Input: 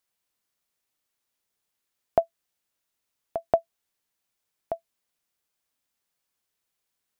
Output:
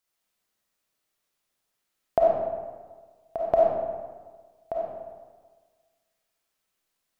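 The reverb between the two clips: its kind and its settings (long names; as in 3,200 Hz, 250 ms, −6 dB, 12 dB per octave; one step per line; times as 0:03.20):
comb and all-pass reverb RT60 1.5 s, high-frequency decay 0.6×, pre-delay 10 ms, DRR −4.5 dB
level −2 dB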